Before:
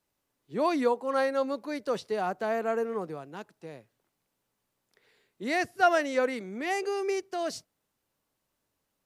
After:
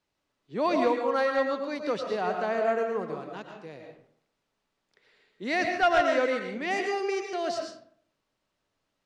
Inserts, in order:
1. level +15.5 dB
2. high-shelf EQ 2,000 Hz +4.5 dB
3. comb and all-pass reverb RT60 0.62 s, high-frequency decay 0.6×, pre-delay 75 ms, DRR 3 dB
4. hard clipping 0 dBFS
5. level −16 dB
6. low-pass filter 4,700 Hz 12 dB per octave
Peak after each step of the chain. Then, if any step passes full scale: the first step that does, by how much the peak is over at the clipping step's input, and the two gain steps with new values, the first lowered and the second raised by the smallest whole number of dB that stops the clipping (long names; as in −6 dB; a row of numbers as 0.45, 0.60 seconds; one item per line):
+5.0, +6.0, +6.5, 0.0, −16.0, −15.5 dBFS
step 1, 6.5 dB
step 1 +8.5 dB, step 5 −9 dB